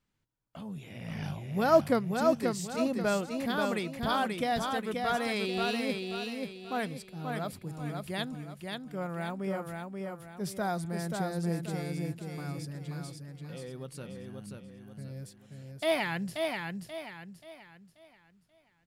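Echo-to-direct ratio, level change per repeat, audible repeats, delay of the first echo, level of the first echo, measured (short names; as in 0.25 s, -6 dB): -3.5 dB, -8.5 dB, 4, 0.533 s, -4.0 dB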